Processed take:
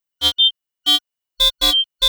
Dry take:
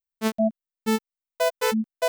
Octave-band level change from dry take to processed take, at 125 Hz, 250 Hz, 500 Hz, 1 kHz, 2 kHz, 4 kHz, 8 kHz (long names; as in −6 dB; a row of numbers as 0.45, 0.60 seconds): can't be measured, −10.0 dB, −10.5 dB, −1.5 dB, −0.5 dB, +25.0 dB, +7.5 dB